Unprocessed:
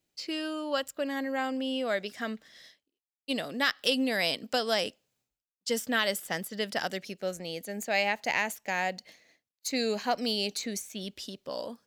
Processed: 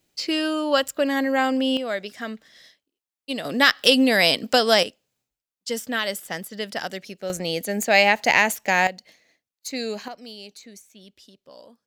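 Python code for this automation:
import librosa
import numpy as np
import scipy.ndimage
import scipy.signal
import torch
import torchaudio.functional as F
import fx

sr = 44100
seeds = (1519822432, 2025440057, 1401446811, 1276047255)

y = fx.gain(x, sr, db=fx.steps((0.0, 10.0), (1.77, 2.5), (3.45, 10.5), (4.83, 2.0), (7.3, 11.0), (8.87, 0.5), (10.08, -10.0)))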